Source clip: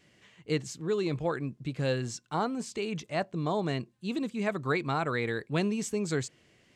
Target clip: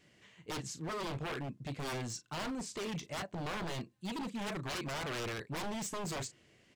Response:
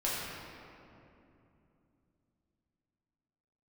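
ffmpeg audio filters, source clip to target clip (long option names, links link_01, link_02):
-filter_complex "[0:a]asplit=2[link_01][link_02];[link_02]adelay=36,volume=-12dB[link_03];[link_01][link_03]amix=inputs=2:normalize=0,aeval=exprs='0.0282*(abs(mod(val(0)/0.0282+3,4)-2)-1)':channel_layout=same,volume=-2.5dB"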